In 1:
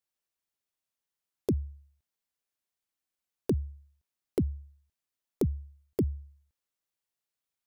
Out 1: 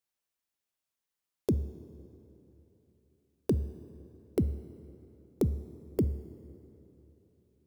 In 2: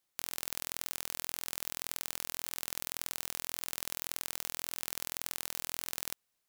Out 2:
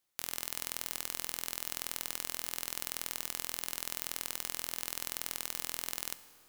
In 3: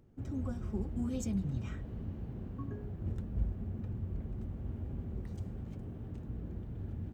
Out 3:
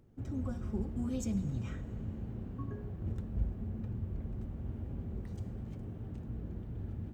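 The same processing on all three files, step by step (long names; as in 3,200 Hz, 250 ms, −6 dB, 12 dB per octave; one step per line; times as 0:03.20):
tuned comb filter 110 Hz, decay 0.82 s, harmonics all, mix 40%
dense smooth reverb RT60 3.5 s, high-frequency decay 0.65×, DRR 14 dB
level +4 dB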